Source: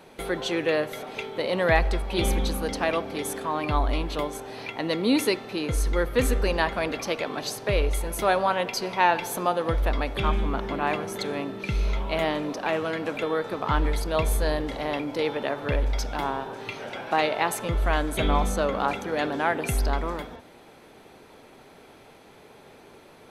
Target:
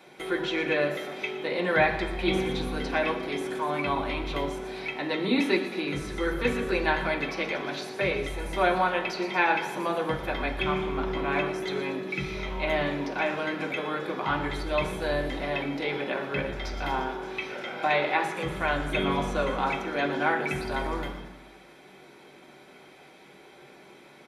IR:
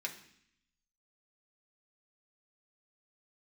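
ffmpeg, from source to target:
-filter_complex "[0:a]asplit=7[link_01][link_02][link_03][link_04][link_05][link_06][link_07];[link_02]adelay=112,afreqshift=36,volume=-17dB[link_08];[link_03]adelay=224,afreqshift=72,volume=-21.6dB[link_09];[link_04]adelay=336,afreqshift=108,volume=-26.2dB[link_10];[link_05]adelay=448,afreqshift=144,volume=-30.7dB[link_11];[link_06]adelay=560,afreqshift=180,volume=-35.3dB[link_12];[link_07]adelay=672,afreqshift=216,volume=-39.9dB[link_13];[link_01][link_08][link_09][link_10][link_11][link_12][link_13]amix=inputs=7:normalize=0,acrossover=split=4100[link_14][link_15];[link_15]acompressor=threshold=-46dB:ratio=4:attack=1:release=60[link_16];[link_14][link_16]amix=inputs=2:normalize=0[link_17];[1:a]atrim=start_sample=2205[link_18];[link_17][link_18]afir=irnorm=-1:irlink=0,asetrate=42336,aresample=44100"

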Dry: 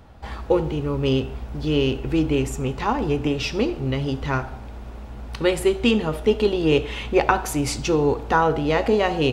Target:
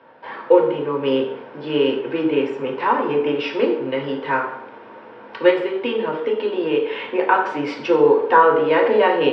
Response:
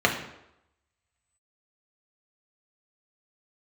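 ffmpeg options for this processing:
-filter_complex "[0:a]asplit=3[link_01][link_02][link_03];[link_01]afade=type=out:start_time=5.5:duration=0.02[link_04];[link_02]acompressor=threshold=-20dB:ratio=6,afade=type=in:start_time=5.5:duration=0.02,afade=type=out:start_time=7.3:duration=0.02[link_05];[link_03]afade=type=in:start_time=7.3:duration=0.02[link_06];[link_04][link_05][link_06]amix=inputs=3:normalize=0,highpass=410,equalizer=frequency=480:width_type=q:width=4:gain=9,equalizer=frequency=690:width_type=q:width=4:gain=-9,equalizer=frequency=1000:width_type=q:width=4:gain=4,equalizer=frequency=1600:width_type=q:width=4:gain=5,equalizer=frequency=2600:width_type=q:width=4:gain=-6,equalizer=frequency=3800:width_type=q:width=4:gain=-8,lowpass=frequency=4000:width=0.5412,lowpass=frequency=4000:width=1.3066[link_07];[1:a]atrim=start_sample=2205,asetrate=57330,aresample=44100[link_08];[link_07][link_08]afir=irnorm=-1:irlink=0,volume=-9dB"

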